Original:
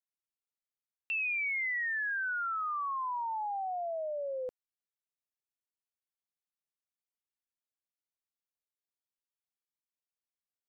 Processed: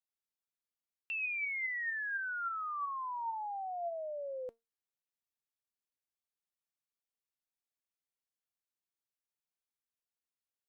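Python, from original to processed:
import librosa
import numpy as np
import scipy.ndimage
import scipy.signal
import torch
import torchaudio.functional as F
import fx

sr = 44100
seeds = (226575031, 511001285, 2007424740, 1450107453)

y = fx.comb_fb(x, sr, f0_hz=230.0, decay_s=0.21, harmonics='all', damping=0.0, mix_pct=50)
y = y * 10.0 ** (1.0 / 20.0)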